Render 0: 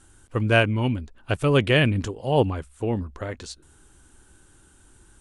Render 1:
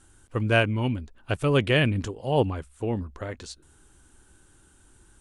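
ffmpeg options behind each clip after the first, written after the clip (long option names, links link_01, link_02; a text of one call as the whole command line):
ffmpeg -i in.wav -af "deesser=0.4,volume=-2.5dB" out.wav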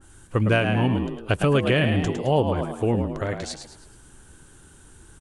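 ffmpeg -i in.wav -filter_complex "[0:a]asplit=6[link_01][link_02][link_03][link_04][link_05][link_06];[link_02]adelay=107,afreqshift=70,volume=-8dB[link_07];[link_03]adelay=214,afreqshift=140,volume=-15.7dB[link_08];[link_04]adelay=321,afreqshift=210,volume=-23.5dB[link_09];[link_05]adelay=428,afreqshift=280,volume=-31.2dB[link_10];[link_06]adelay=535,afreqshift=350,volume=-39dB[link_11];[link_01][link_07][link_08][link_09][link_10][link_11]amix=inputs=6:normalize=0,acompressor=threshold=-23dB:ratio=5,adynamicequalizer=threshold=0.00794:dfrequency=2000:dqfactor=0.7:tfrequency=2000:tqfactor=0.7:attack=5:release=100:ratio=0.375:range=2:mode=cutabove:tftype=highshelf,volume=6.5dB" out.wav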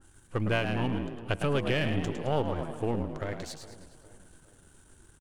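ffmpeg -i in.wav -filter_complex "[0:a]aeval=exprs='if(lt(val(0),0),0.447*val(0),val(0))':channel_layout=same,asplit=2[link_01][link_02];[link_02]adelay=409,lowpass=frequency=2700:poles=1,volume=-18dB,asplit=2[link_03][link_04];[link_04]adelay=409,lowpass=frequency=2700:poles=1,volume=0.47,asplit=2[link_05][link_06];[link_06]adelay=409,lowpass=frequency=2700:poles=1,volume=0.47,asplit=2[link_07][link_08];[link_08]adelay=409,lowpass=frequency=2700:poles=1,volume=0.47[link_09];[link_01][link_03][link_05][link_07][link_09]amix=inputs=5:normalize=0,volume=-5.5dB" out.wav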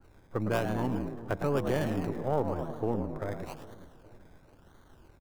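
ffmpeg -i in.wav -filter_complex "[0:a]acrossover=split=160|1800[link_01][link_02][link_03];[link_01]alimiter=level_in=9dB:limit=-24dB:level=0:latency=1,volume=-9dB[link_04];[link_03]acrusher=samples=24:mix=1:aa=0.000001:lfo=1:lforange=14.4:lforate=0.99[link_05];[link_04][link_02][link_05]amix=inputs=3:normalize=0" out.wav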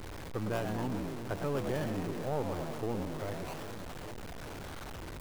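ffmpeg -i in.wav -af "aeval=exprs='val(0)+0.5*0.0299*sgn(val(0))':channel_layout=same,volume=-7dB" out.wav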